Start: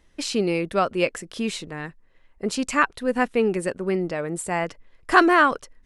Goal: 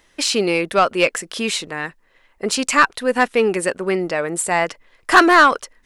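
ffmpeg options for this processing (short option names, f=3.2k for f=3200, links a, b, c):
-filter_complex "[0:a]asplit=2[a][b];[b]highpass=f=720:p=1,volume=14dB,asoftclip=type=tanh:threshold=-2dB[c];[a][c]amix=inputs=2:normalize=0,lowpass=f=2.9k:p=1,volume=-6dB,aemphasis=mode=production:type=50kf,volume=1dB"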